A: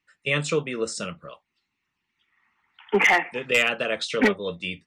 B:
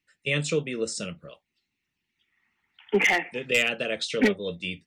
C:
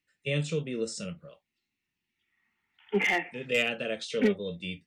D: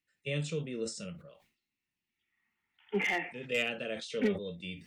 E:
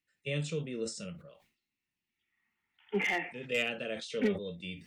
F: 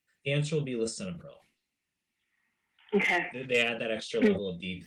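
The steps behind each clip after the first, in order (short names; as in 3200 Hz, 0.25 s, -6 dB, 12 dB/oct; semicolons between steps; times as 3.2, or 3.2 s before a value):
bell 1100 Hz -11.5 dB 1.1 oct
harmonic-percussive split percussive -11 dB
sustainer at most 120 dB/s; gain -5 dB
nothing audible
gain +5.5 dB; Opus 24 kbps 48000 Hz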